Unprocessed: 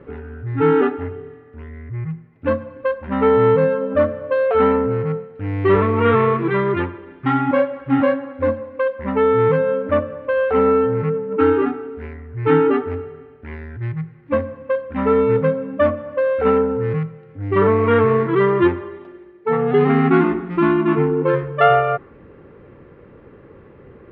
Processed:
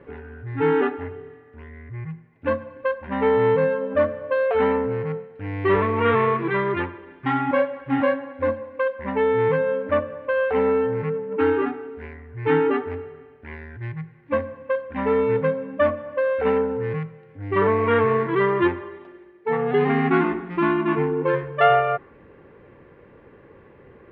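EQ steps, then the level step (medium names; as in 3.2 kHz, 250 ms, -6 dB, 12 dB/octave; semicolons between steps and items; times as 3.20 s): tilt shelf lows -7 dB, about 860 Hz; treble shelf 2.3 kHz -11.5 dB; band-stop 1.3 kHz, Q 6.5; 0.0 dB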